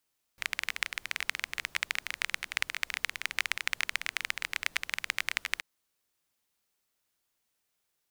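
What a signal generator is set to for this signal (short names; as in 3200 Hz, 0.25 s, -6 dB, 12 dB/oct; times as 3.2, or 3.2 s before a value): rain from filtered ticks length 5.23 s, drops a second 19, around 2100 Hz, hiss -23 dB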